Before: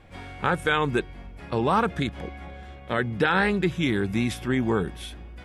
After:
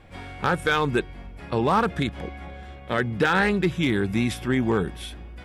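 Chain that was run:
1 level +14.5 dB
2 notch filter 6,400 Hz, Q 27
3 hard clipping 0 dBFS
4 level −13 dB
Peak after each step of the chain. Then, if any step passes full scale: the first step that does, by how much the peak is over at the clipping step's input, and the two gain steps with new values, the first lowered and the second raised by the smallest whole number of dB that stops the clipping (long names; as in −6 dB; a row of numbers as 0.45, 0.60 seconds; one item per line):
+4.0, +4.0, 0.0, −13.0 dBFS
step 1, 4.0 dB
step 1 +10.5 dB, step 4 −9 dB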